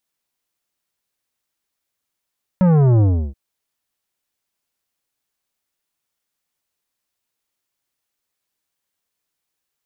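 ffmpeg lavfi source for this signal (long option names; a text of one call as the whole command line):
ffmpeg -f lavfi -i "aevalsrc='0.266*clip((0.73-t)/0.33,0,1)*tanh(3.98*sin(2*PI*190*0.73/log(65/190)*(exp(log(65/190)*t/0.73)-1)))/tanh(3.98)':duration=0.73:sample_rate=44100" out.wav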